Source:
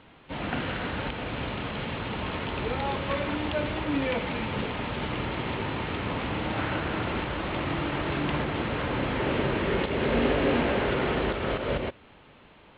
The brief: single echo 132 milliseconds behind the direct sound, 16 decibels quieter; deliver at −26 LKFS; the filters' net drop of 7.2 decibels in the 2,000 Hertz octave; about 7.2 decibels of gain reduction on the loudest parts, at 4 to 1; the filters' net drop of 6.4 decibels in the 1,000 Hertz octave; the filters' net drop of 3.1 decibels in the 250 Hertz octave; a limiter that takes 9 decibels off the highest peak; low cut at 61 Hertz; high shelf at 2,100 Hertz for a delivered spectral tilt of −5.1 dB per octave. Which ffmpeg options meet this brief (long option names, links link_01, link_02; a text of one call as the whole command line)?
ffmpeg -i in.wav -af "highpass=61,equalizer=frequency=250:width_type=o:gain=-3.5,equalizer=frequency=1000:width_type=o:gain=-6,equalizer=frequency=2000:width_type=o:gain=-5,highshelf=frequency=2100:gain=-4,acompressor=threshold=-32dB:ratio=4,alimiter=level_in=8dB:limit=-24dB:level=0:latency=1,volume=-8dB,aecho=1:1:132:0.158,volume=14.5dB" out.wav